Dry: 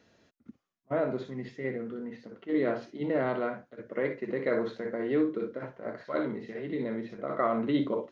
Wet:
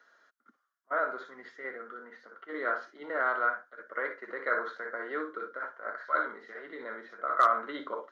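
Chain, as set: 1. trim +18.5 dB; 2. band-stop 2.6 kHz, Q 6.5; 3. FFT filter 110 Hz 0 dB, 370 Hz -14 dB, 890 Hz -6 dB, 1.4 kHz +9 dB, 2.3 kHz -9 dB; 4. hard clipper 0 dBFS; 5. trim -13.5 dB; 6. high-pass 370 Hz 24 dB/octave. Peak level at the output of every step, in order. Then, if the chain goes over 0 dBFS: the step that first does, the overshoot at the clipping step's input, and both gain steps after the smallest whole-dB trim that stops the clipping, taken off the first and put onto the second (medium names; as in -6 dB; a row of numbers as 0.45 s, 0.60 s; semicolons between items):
+2.5 dBFS, +2.5 dBFS, +4.0 dBFS, 0.0 dBFS, -13.5 dBFS, -10.0 dBFS; step 1, 4.0 dB; step 1 +14.5 dB, step 5 -9.5 dB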